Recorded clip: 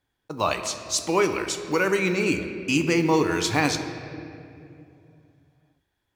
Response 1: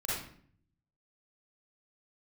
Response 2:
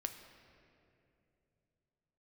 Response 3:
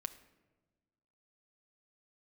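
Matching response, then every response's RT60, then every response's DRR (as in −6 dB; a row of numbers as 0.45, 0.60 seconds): 2; 0.55, 2.7, 1.2 seconds; −8.5, 6.0, 7.0 decibels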